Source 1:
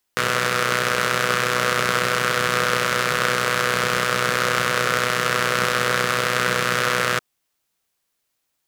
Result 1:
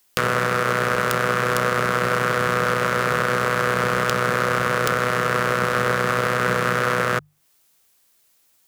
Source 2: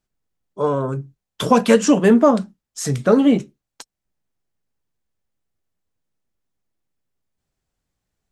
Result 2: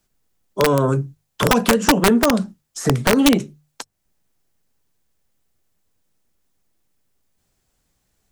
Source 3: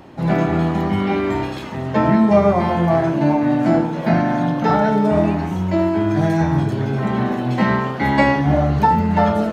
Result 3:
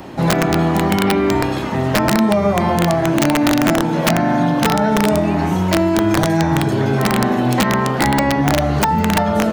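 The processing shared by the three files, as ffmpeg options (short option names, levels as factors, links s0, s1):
-filter_complex "[0:a]alimiter=limit=0.422:level=0:latency=1:release=212,highshelf=f=5500:g=6.5,bandreject=f=50:t=h:w=6,bandreject=f=100:t=h:w=6,bandreject=f=150:t=h:w=6,acrossover=split=270|1800[s0][s1][s2];[s0]acompressor=threshold=0.0447:ratio=4[s3];[s1]acompressor=threshold=0.0562:ratio=4[s4];[s2]acompressor=threshold=0.00794:ratio=4[s5];[s3][s4][s5]amix=inputs=3:normalize=0,aeval=exprs='(mod(5.62*val(0)+1,2)-1)/5.62':c=same,volume=2.66"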